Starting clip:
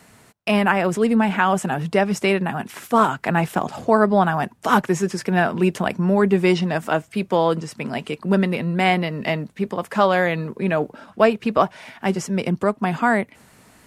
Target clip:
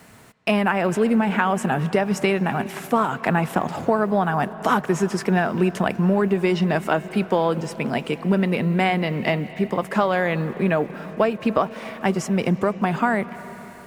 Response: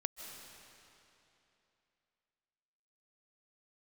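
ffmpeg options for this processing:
-filter_complex "[0:a]acompressor=threshold=-18dB:ratio=6,acrusher=bits=8:mix=0:aa=0.5,asplit=2[a][b];[1:a]atrim=start_sample=2205,asetrate=36162,aresample=44100,lowpass=3.8k[c];[b][c]afir=irnorm=-1:irlink=0,volume=-8dB[d];[a][d]amix=inputs=2:normalize=0"

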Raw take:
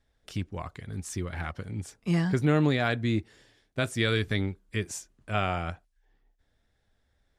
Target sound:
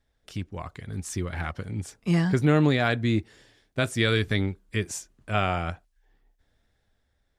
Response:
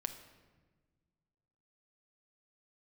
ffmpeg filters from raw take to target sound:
-af "dynaudnorm=f=110:g=13:m=4dB,volume=-1dB"

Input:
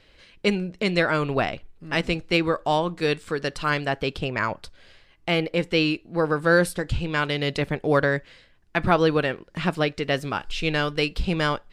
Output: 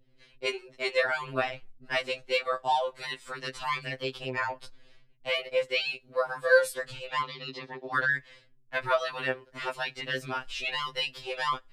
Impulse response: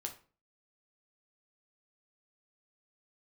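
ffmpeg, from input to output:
-filter_complex "[0:a]asettb=1/sr,asplit=3[a][b][c];[a]atrim=end=7.214[d];[b]atrim=start=7.21:end=7.95,asetpts=PTS-STARTPTS,afade=t=in:d=0.004:c=qsin,afade=t=out:st=0.736:d=0.004:c=qsin,highpass=f=170:w=0.5412,highpass=f=170:w=1.3066,equalizer=f=620:t=q:w=4:g=-5,equalizer=f=1.5k:t=q:w=4:g=-10,equalizer=f=2.2k:t=q:w=4:g=-10,equalizer=f=3.2k:t=q:w=4:g=-7,lowpass=f=5.1k:w=0.5412,lowpass=f=5.1k:w=1.3066[e];[c]atrim=start=7.946[f];[d][e]acrossfade=d=0.004:c1=hsin:c2=qsin[g];[g][f]acrossfade=d=0.004:c1=qsin:c2=hsin,acrossover=split=390[h][i];[h]acompressor=threshold=-38dB:ratio=10[j];[i]agate=range=-33dB:threshold=-48dB:ratio=3:detection=peak[k];[j][k]amix=inputs=2:normalize=0,afftfilt=real='re*2.45*eq(mod(b,6),0)':imag='im*2.45*eq(mod(b,6),0)':win_size=2048:overlap=0.75,volume=-2dB"

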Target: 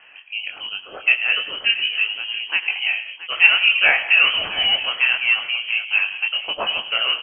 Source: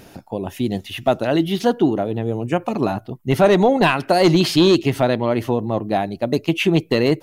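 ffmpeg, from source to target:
-filter_complex "[0:a]acrossover=split=480 2500:gain=0.0891 1 0.2[a][b][c];[a][b][c]amix=inputs=3:normalize=0,asplit=2[d][e];[e]aecho=0:1:44|104|163|178|675:0.112|0.178|0.1|0.119|0.178[f];[d][f]amix=inputs=2:normalize=0,flanger=delay=18.5:depth=7:speed=1.5,asplit=2[g][h];[h]asplit=4[i][j][k][l];[i]adelay=84,afreqshift=-110,volume=-21.5dB[m];[j]adelay=168,afreqshift=-220,volume=-26.9dB[n];[k]adelay=252,afreqshift=-330,volume=-32.2dB[o];[l]adelay=336,afreqshift=-440,volume=-37.6dB[p];[m][n][o][p]amix=inputs=4:normalize=0[q];[g][q]amix=inputs=2:normalize=0,lowpass=f=2.8k:t=q:w=0.5098,lowpass=f=2.8k:t=q:w=0.6013,lowpass=f=2.8k:t=q:w=0.9,lowpass=f=2.8k:t=q:w=2.563,afreqshift=-3300,volume=6.5dB"

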